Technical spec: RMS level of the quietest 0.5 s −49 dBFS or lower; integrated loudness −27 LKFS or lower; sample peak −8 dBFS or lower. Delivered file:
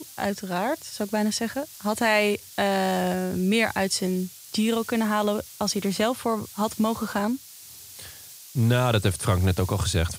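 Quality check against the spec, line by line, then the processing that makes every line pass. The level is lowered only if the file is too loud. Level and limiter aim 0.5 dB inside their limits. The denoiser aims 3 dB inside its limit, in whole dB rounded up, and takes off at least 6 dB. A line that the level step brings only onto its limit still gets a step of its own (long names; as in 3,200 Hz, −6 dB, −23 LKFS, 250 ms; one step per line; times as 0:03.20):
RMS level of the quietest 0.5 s −45 dBFS: out of spec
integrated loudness −25.0 LKFS: out of spec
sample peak −7.0 dBFS: out of spec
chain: broadband denoise 6 dB, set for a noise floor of −45 dBFS
level −2.5 dB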